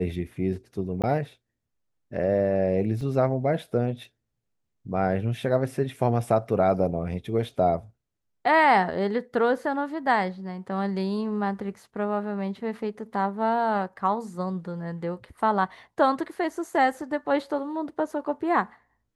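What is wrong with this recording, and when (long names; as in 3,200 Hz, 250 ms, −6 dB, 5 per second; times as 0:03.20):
0:01.02–0:01.04: drop-out
0:03.01: drop-out 3.4 ms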